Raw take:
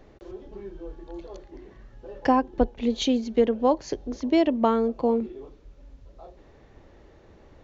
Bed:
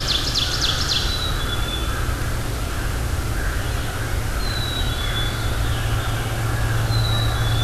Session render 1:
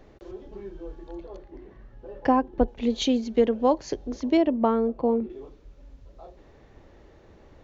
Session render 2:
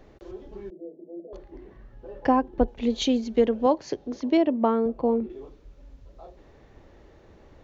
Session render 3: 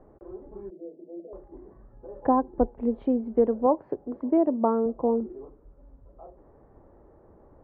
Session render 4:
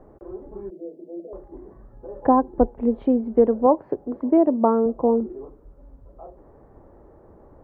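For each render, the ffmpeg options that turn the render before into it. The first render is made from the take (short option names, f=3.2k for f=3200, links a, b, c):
-filter_complex "[0:a]asettb=1/sr,asplit=3[a][b][c];[a]atrim=end=1.154[d];[b]atrim=start=1.15:end=2.68,asetpts=PTS-STARTPTS,afade=t=in:d=0.004:c=qsin,afade=t=out:st=1.526:d=0.004:c=qsin,lowpass=f=2.1k:p=1[e];[c]atrim=start=2.676[f];[d][e]acrossfade=d=0.004:c1=hsin:c2=qsin[g];[g][f]acrossfade=d=0.004:c1=qsin:c2=hsin,asettb=1/sr,asplit=3[h][i][j];[h]atrim=end=4.374[k];[i]atrim=start=4.37:end=5.3,asetpts=PTS-STARTPTS,afade=t=in:d=0.004:c=qsin,afade=t=out:st=0.926:d=0.004:c=qsin,lowpass=f=1.4k:p=1[l];[j]atrim=start=5.296[m];[k][l]acrossfade=d=0.004:c1=hsin:c2=qsin[n];[n][m]acrossfade=d=0.004:c1=qsin:c2=hsin"
-filter_complex "[0:a]asettb=1/sr,asplit=3[a][b][c];[a]atrim=end=0.704[d];[b]atrim=start=0.7:end=1.33,asetpts=PTS-STARTPTS,afade=t=in:d=0.004:c=qsin,afade=t=out:st=0.626:d=0.004:c=qsin,asuperpass=centerf=340:order=20:qfactor=0.64[e];[c]atrim=start=1.326[f];[d][e]acrossfade=d=0.004:c1=hsin:c2=qsin[g];[g][f]acrossfade=d=0.004:c1=qsin:c2=hsin,asettb=1/sr,asplit=3[h][i][j];[h]atrim=end=3.664[k];[i]atrim=start=3.66:end=4.86,asetpts=PTS-STARTPTS,afade=t=in:d=0.004:c=qsin,afade=t=out:st=1.196:d=0.004:c=qsin,highpass=110,lowpass=6.1k[l];[j]atrim=start=4.856[m];[k][l]acrossfade=d=0.004:c1=hsin:c2=qsin[n];[n][m]acrossfade=d=0.004:c1=qsin:c2=hsin"
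-af "lowpass=f=1.2k:w=0.5412,lowpass=f=1.2k:w=1.3066,lowshelf=f=180:g=-4.5"
-af "volume=5dB"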